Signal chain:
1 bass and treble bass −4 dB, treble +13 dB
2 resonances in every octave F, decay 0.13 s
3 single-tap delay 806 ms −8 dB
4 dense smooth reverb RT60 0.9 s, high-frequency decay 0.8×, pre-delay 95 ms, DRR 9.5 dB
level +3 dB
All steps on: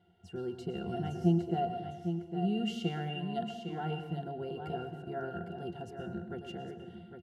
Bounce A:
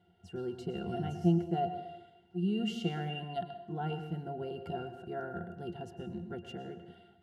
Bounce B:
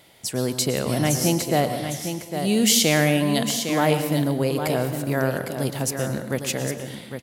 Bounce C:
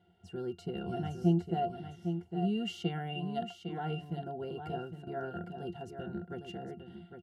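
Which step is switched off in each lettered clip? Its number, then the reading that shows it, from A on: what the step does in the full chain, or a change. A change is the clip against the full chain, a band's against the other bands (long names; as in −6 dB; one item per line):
3, echo-to-direct ratio −5.5 dB to −9.5 dB
2, 4 kHz band +9.0 dB
4, echo-to-direct ratio −5.5 dB to −8.0 dB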